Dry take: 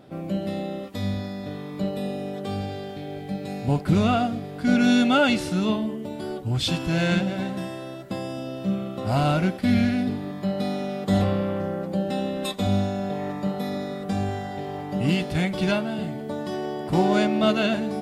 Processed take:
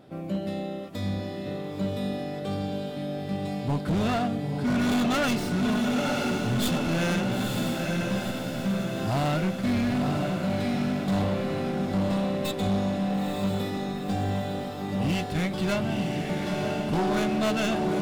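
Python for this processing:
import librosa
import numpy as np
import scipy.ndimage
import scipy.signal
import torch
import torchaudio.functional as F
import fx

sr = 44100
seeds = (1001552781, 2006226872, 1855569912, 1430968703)

y = fx.tracing_dist(x, sr, depth_ms=0.13)
y = fx.echo_diffused(y, sr, ms=938, feedback_pct=58, wet_db=-4)
y = np.clip(y, -10.0 ** (-19.0 / 20.0), 10.0 ** (-19.0 / 20.0))
y = F.gain(torch.from_numpy(y), -2.5).numpy()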